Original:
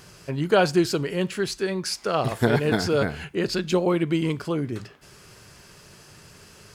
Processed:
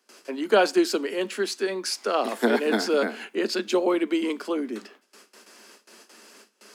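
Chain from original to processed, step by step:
noise gate with hold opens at −38 dBFS
Butterworth high-pass 210 Hz 96 dB per octave

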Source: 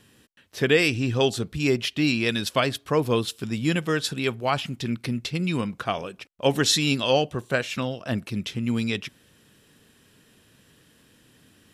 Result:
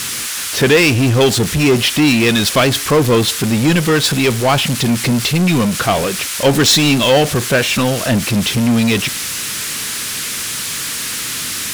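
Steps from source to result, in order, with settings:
noise in a band 1,200–12,000 Hz −45 dBFS
power curve on the samples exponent 0.5
level +4.5 dB

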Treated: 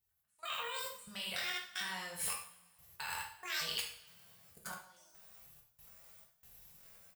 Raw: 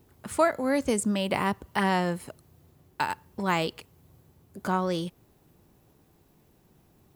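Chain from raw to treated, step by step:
pitch shifter gated in a rhythm +10.5 semitones, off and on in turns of 451 ms
high-shelf EQ 11,000 Hz +8 dB
reversed playback
downward compressor 16 to 1, threshold −33 dBFS, peak gain reduction 17 dB
reversed playback
gate pattern "..xx.xx.xxx" 70 BPM −24 dB
on a send: ambience of single reflections 23 ms −5 dB, 80 ms −7 dB
on the sum: output level in coarse steps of 22 dB
guitar amp tone stack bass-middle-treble 10-0-10
coupled-rooms reverb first 0.5 s, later 1.9 s, from −21 dB, DRR −0.5 dB
level +9 dB

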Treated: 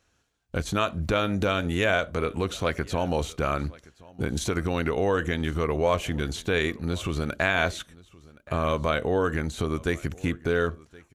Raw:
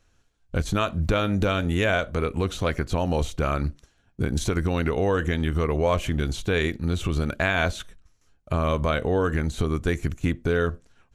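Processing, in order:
high-pass filter 41 Hz
low-shelf EQ 190 Hz −6 dB
single-tap delay 1,071 ms −23 dB

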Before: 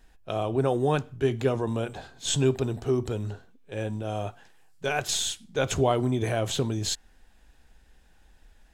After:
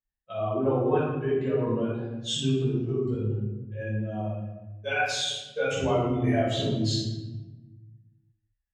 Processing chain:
spectral dynamics exaggerated over time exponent 2
downward compressor, threshold −29 dBFS, peak gain reduction 9.5 dB
band-pass filter 130–5,200 Hz
convolution reverb RT60 1.1 s, pre-delay 6 ms, DRR −11 dB
level −5.5 dB

